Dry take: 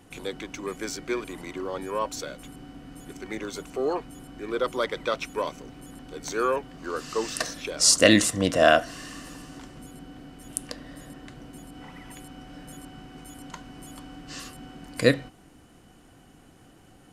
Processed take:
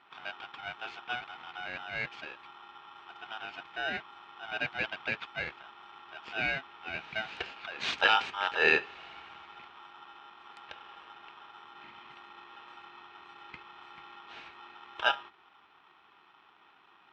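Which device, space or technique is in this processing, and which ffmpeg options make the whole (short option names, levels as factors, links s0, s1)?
ring modulator pedal into a guitar cabinet: -af "aeval=exprs='val(0)*sgn(sin(2*PI*1100*n/s))':c=same,highpass=92,equalizer=f=110:t=q:w=4:g=-7,equalizer=f=570:t=q:w=4:g=-8,equalizer=f=2500:t=q:w=4:g=7,lowpass=f=3400:w=0.5412,lowpass=f=3400:w=1.3066,volume=0.447"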